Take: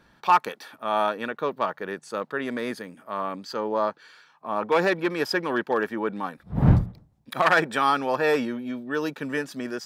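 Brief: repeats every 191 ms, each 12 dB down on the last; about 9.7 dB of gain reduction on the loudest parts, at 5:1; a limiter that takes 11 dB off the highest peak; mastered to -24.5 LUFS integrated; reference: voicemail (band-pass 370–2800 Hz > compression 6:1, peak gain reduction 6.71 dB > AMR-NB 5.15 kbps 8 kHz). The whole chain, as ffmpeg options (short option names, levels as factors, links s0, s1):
-af "acompressor=threshold=0.0794:ratio=5,alimiter=limit=0.0794:level=0:latency=1,highpass=370,lowpass=2800,aecho=1:1:191|382|573:0.251|0.0628|0.0157,acompressor=threshold=0.02:ratio=6,volume=6.68" -ar 8000 -c:a libopencore_amrnb -b:a 5150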